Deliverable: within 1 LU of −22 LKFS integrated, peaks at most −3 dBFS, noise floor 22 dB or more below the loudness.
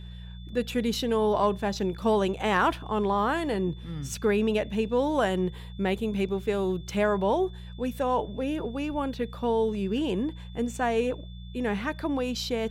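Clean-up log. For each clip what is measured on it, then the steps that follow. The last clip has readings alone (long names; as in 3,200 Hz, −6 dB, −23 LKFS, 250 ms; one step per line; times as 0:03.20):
mains hum 60 Hz; hum harmonics up to 180 Hz; level of the hum −38 dBFS; interfering tone 3,500 Hz; level of the tone −53 dBFS; integrated loudness −28.0 LKFS; sample peak −13.0 dBFS; target loudness −22.0 LKFS
→ hum removal 60 Hz, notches 3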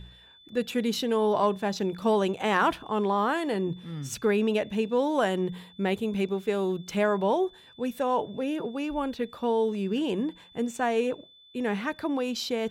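mains hum none found; interfering tone 3,500 Hz; level of the tone −53 dBFS
→ notch filter 3,500 Hz, Q 30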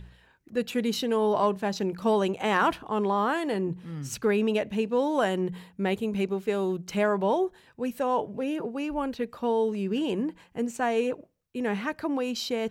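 interfering tone none found; integrated loudness −28.0 LKFS; sample peak −12.0 dBFS; target loudness −22.0 LKFS
→ level +6 dB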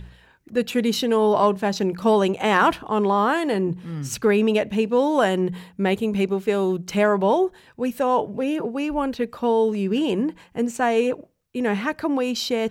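integrated loudness −22.0 LKFS; sample peak −6.0 dBFS; background noise floor −54 dBFS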